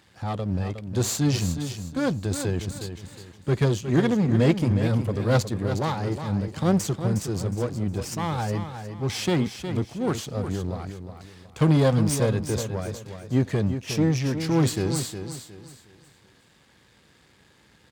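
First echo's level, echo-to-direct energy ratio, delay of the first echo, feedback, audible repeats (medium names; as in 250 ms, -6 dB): -9.0 dB, -8.5 dB, 362 ms, 31%, 3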